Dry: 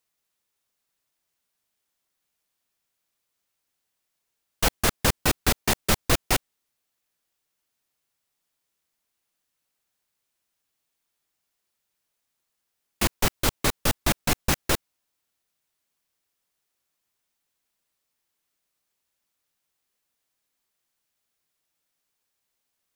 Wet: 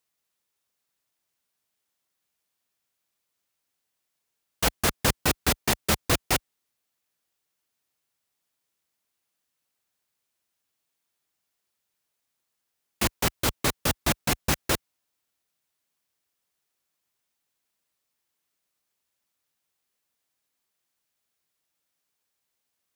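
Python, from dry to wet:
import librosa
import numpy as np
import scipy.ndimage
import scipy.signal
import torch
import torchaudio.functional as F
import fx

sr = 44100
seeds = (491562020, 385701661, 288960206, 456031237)

y = scipy.signal.sosfilt(scipy.signal.butter(2, 47.0, 'highpass', fs=sr, output='sos'), x)
y = y * librosa.db_to_amplitude(-1.0)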